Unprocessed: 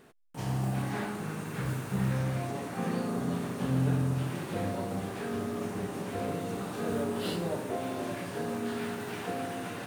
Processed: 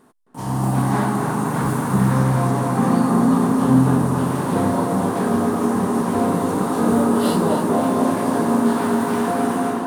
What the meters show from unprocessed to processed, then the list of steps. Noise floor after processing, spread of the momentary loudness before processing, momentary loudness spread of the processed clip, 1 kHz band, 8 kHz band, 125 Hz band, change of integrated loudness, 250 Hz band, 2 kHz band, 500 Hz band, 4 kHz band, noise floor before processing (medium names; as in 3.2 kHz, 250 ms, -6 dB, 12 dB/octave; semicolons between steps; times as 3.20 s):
-25 dBFS, 6 LU, 5 LU, +17.0 dB, +13.5 dB, +11.0 dB, +14.5 dB, +16.5 dB, +10.0 dB, +13.0 dB, +7.5 dB, -40 dBFS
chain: fifteen-band graphic EQ 250 Hz +9 dB, 1 kHz +11 dB, 2.5 kHz -6 dB, 10 kHz +8 dB; level rider gain up to 10 dB; tape echo 263 ms, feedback 82%, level -4 dB, low-pass 2.5 kHz; trim -1.5 dB